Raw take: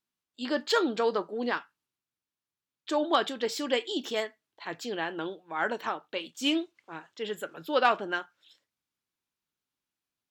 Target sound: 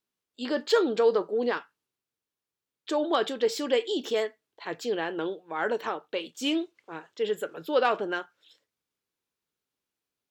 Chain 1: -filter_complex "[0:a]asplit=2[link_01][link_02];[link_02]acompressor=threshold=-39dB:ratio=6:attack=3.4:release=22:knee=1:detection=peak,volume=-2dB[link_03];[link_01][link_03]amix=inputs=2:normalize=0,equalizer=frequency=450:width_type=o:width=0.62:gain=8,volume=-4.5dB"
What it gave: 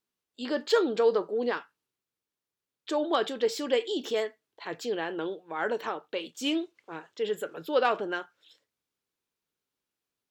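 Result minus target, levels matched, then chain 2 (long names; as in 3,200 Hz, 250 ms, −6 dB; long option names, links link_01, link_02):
downward compressor: peak gain reduction +6.5 dB
-filter_complex "[0:a]asplit=2[link_01][link_02];[link_02]acompressor=threshold=-31.5dB:ratio=6:attack=3.4:release=22:knee=1:detection=peak,volume=-2dB[link_03];[link_01][link_03]amix=inputs=2:normalize=0,equalizer=frequency=450:width_type=o:width=0.62:gain=8,volume=-4.5dB"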